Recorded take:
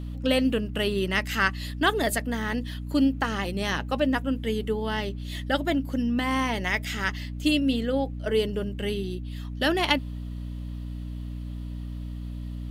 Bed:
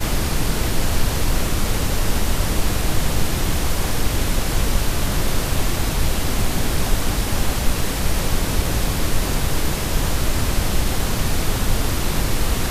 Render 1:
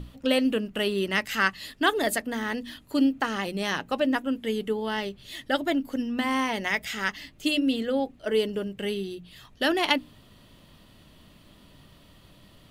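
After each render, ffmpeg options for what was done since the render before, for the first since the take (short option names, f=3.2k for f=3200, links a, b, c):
-af "bandreject=f=60:t=h:w=6,bandreject=f=120:t=h:w=6,bandreject=f=180:t=h:w=6,bandreject=f=240:t=h:w=6,bandreject=f=300:t=h:w=6"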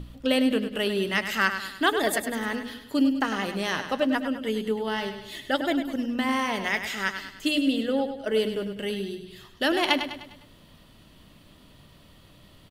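-af "aecho=1:1:101|202|303|404|505:0.355|0.167|0.0784|0.0368|0.0173"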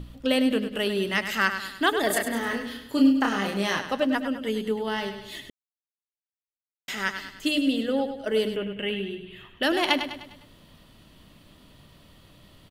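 -filter_complex "[0:a]asettb=1/sr,asplit=3[a][b][c];[a]atrim=end=2.074[d];[b]atrim=start=2.07:end=3.79,asetpts=PTS-STARTPTS,afade=t=in:d=0.004:c=qsin,afade=t=out:st=1.716:d=0.004:c=qsin,asplit=2[e][f];[f]adelay=30,volume=-3.5dB[g];[e][g]amix=inputs=2:normalize=0,atrim=end_sample=75852[h];[c]atrim=start=3.786[i];[d][h]acrossfade=d=0.004:c1=hsin:c2=qsin[j];[j][i]acrossfade=d=0.004:c1=qsin:c2=hsin,asettb=1/sr,asplit=3[k][l][m];[k]atrim=end=8.564[n];[l]atrim=start=8.56:end=9.63,asetpts=PTS-STARTPTS,afade=t=in:d=0.004:c=qsin,afade=t=out:st=1.066:d=0.004:c=qsin,highshelf=f=3.7k:t=q:w=3:g=-10.5[o];[m]atrim=start=9.626[p];[n][o]acrossfade=d=0.004:c1=hsin:c2=qsin[q];[q][p]acrossfade=d=0.004:c1=qsin:c2=hsin,asplit=3[r][s][t];[r]atrim=end=5.5,asetpts=PTS-STARTPTS,afade=t=out:st=5.496:d=0.004:c=hsin[u];[s]atrim=start=5.5:end=6.88,asetpts=PTS-STARTPTS,volume=0[v];[t]atrim=start=6.88,asetpts=PTS-STARTPTS,afade=t=in:d=0.004:c=hsin[w];[u][v][w]concat=n=3:v=0:a=1"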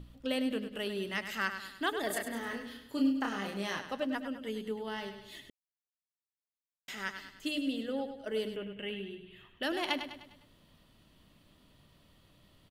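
-af "volume=-10dB"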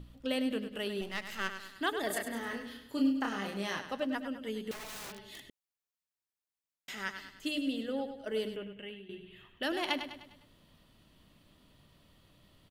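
-filter_complex "[0:a]asettb=1/sr,asplit=3[a][b][c];[a]atrim=end=1.014[d];[b]atrim=start=1.01:end=1.76,asetpts=PTS-STARTPTS,afade=t=in:d=0.004:c=qsin,afade=t=out:st=0.746:d=0.004:c=qsin,aeval=exprs='if(lt(val(0),0),0.251*val(0),val(0))':c=same[e];[c]atrim=start=1.756[f];[d][e]acrossfade=d=0.004:c1=hsin:c2=qsin[g];[g][f]acrossfade=d=0.004:c1=qsin:c2=hsin,asettb=1/sr,asplit=3[h][i][j];[h]atrim=end=4.714[k];[i]atrim=start=4.71:end=5.43,asetpts=PTS-STARTPTS,afade=t=in:d=0.004:c=qsin,afade=t=out:st=0.716:d=0.004:c=qsin,aeval=exprs='(mod(94.4*val(0)+1,2)-1)/94.4':c=same[l];[j]atrim=start=5.426[m];[k][l]acrossfade=d=0.004:c1=hsin:c2=qsin[n];[n][m]acrossfade=d=0.004:c1=qsin:c2=hsin,asplit=2[o][p];[o]atrim=end=9.09,asetpts=PTS-STARTPTS,afade=t=out:st=8.47:d=0.62:silence=0.251189[q];[p]atrim=start=9.09,asetpts=PTS-STARTPTS,afade=t=in:d=0.004:c=hsin:silence=0.251189[r];[q][r]concat=n=2:v=0:a=1"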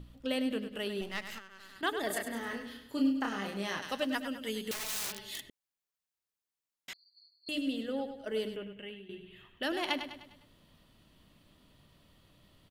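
-filter_complex "[0:a]asettb=1/sr,asplit=3[a][b][c];[a]atrim=end=1.384[d];[b]atrim=start=1.38:end=1.83,asetpts=PTS-STARTPTS,afade=t=in:d=0.004:c=qsin,afade=t=out:st=0.446:d=0.004:c=qsin,acompressor=threshold=-45dB:ratio=16:attack=3.2:release=140:knee=1:detection=peak[e];[c]atrim=start=1.826[f];[d][e]acrossfade=d=0.004:c1=hsin:c2=qsin[g];[g][f]acrossfade=d=0.004:c1=qsin:c2=hsin,asettb=1/sr,asplit=3[h][i][j];[h]atrim=end=3.824[k];[i]atrim=start=3.82:end=5.41,asetpts=PTS-STARTPTS,afade=t=in:d=0.004:c=qsin,afade=t=out:st=1.586:d=0.004:c=qsin,highshelf=f=2.5k:g=11.5[l];[j]atrim=start=5.406[m];[k][l]acrossfade=d=0.004:c1=hsin:c2=qsin[n];[n][m]acrossfade=d=0.004:c1=qsin:c2=hsin,asettb=1/sr,asplit=3[o][p][q];[o]atrim=end=6.934[r];[p]atrim=start=6.93:end=7.49,asetpts=PTS-STARTPTS,afade=t=in:d=0.004:c=qsin,afade=t=out:st=0.556:d=0.004:c=qsin,asuperpass=centerf=4400:order=20:qfactor=7.8[s];[q]atrim=start=7.486[t];[r][s]acrossfade=d=0.004:c1=hsin:c2=qsin[u];[u][t]acrossfade=d=0.004:c1=qsin:c2=hsin"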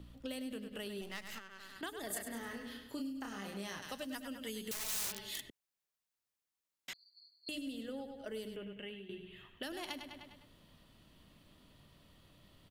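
-filter_complex "[0:a]acrossover=split=160|5600[a][b][c];[a]alimiter=level_in=25.5dB:limit=-24dB:level=0:latency=1,volume=-25.5dB[d];[b]acompressor=threshold=-42dB:ratio=6[e];[d][e][c]amix=inputs=3:normalize=0"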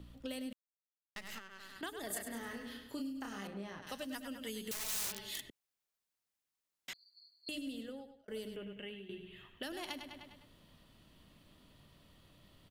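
-filter_complex "[0:a]asettb=1/sr,asplit=3[a][b][c];[a]atrim=end=3.474[d];[b]atrim=start=3.47:end=3.87,asetpts=PTS-STARTPTS,afade=t=in:d=0.004:c=qsin,afade=t=out:st=0.396:d=0.004:c=qsin,lowpass=f=1.2k:p=1[e];[c]atrim=start=3.866[f];[d][e]acrossfade=d=0.004:c1=hsin:c2=qsin[g];[g][f]acrossfade=d=0.004:c1=qsin:c2=hsin,asplit=4[h][i][j][k];[h]atrim=end=0.53,asetpts=PTS-STARTPTS,afade=t=out:st=0.526:d=0.004:c=hsin[l];[i]atrim=start=0.53:end=1.16,asetpts=PTS-STARTPTS,volume=0[m];[j]atrim=start=1.16:end=8.28,asetpts=PTS-STARTPTS,afade=t=in:d=0.004:c=hsin,afade=t=out:st=6.61:d=0.51[n];[k]atrim=start=8.28,asetpts=PTS-STARTPTS,afade=t=in:d=0.004:c=hsin[o];[l][m][n][o]concat=n=4:v=0:a=1"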